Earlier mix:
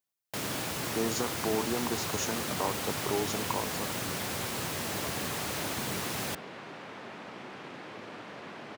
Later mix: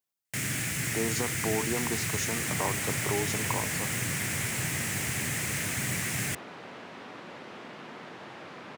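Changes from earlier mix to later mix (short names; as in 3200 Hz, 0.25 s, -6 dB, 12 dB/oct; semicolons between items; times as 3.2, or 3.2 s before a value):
first sound: add graphic EQ 125/500/1000/2000/4000/8000 Hz +9/-7/-11/+12/-7/+9 dB; second sound: entry -2.45 s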